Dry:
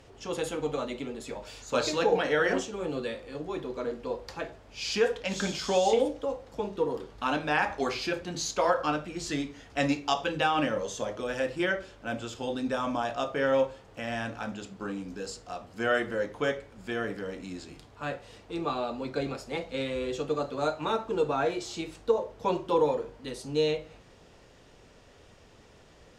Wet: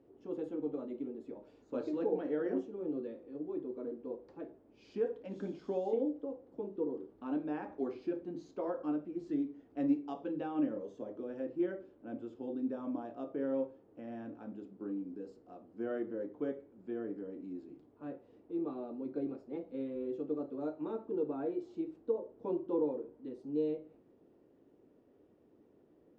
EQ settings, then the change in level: band-pass 310 Hz, Q 3; 0.0 dB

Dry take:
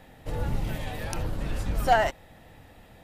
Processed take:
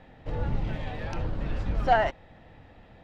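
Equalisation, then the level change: air absorption 190 m; 0.0 dB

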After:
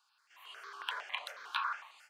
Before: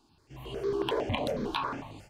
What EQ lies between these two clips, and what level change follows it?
ladder high-pass 1200 Hz, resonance 55%; +5.5 dB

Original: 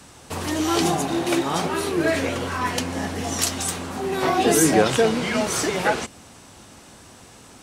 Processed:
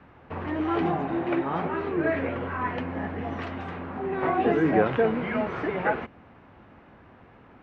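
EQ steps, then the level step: LPF 2200 Hz 24 dB/oct; -4.0 dB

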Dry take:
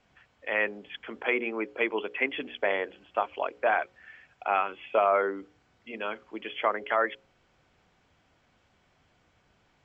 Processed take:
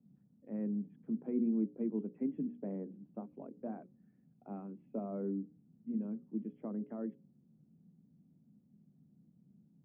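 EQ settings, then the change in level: Butterworth band-pass 190 Hz, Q 2.2; +12.0 dB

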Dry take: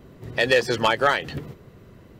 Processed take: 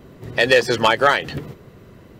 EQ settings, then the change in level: low shelf 120 Hz -3.5 dB; +4.5 dB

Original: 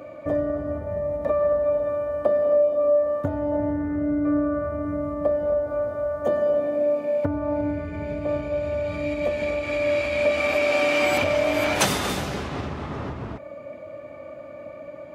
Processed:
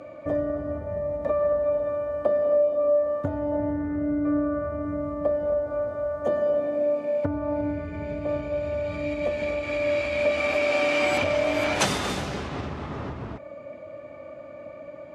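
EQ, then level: LPF 9000 Hz 12 dB/oct; -2.0 dB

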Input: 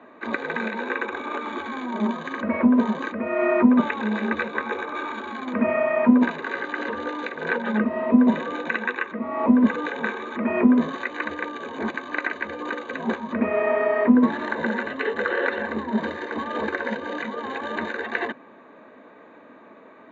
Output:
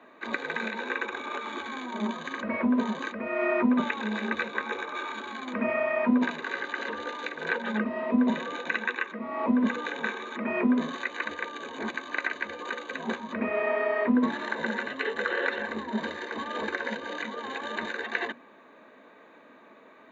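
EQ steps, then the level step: HPF 87 Hz; high shelf 2600 Hz +11.5 dB; notches 60/120/180/240/300 Hz; -6.5 dB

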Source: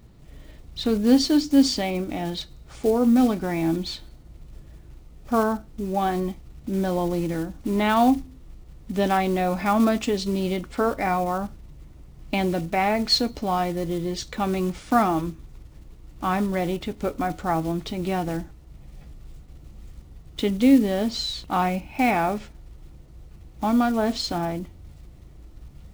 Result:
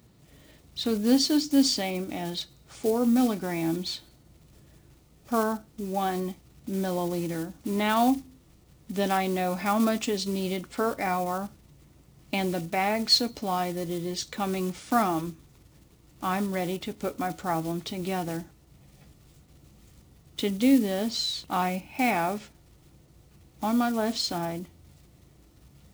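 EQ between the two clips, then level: HPF 95 Hz 12 dB/oct; high shelf 3800 Hz +7.5 dB; -4.5 dB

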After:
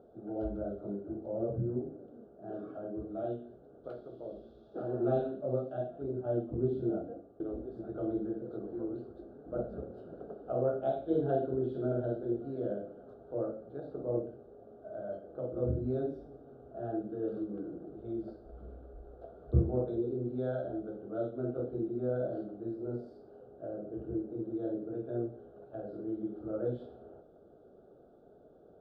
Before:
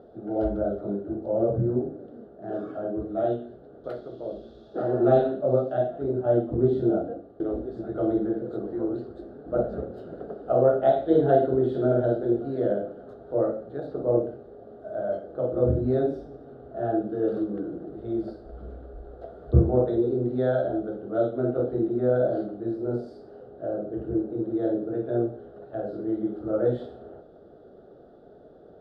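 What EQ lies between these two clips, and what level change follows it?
high shelf 3000 Hz -8.5 dB; dynamic EQ 790 Hz, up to -4 dB, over -33 dBFS, Q 0.74; Butterworth band-stop 1900 Hz, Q 3.9; -8.0 dB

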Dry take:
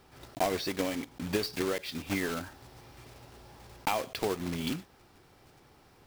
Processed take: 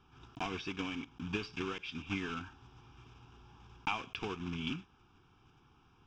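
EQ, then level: LPF 4900 Hz 24 dB/oct; dynamic EQ 2300 Hz, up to +7 dB, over -53 dBFS, Q 2.2; fixed phaser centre 2900 Hz, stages 8; -3.0 dB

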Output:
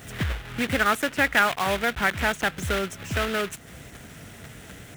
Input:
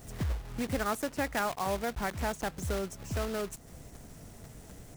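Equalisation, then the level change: HPF 64 Hz; band shelf 2200 Hz +9.5 dB; +6.0 dB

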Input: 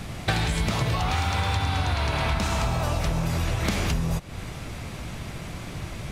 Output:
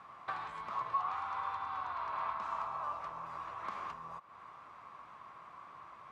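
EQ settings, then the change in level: band-pass 1100 Hz, Q 8.9; +2.0 dB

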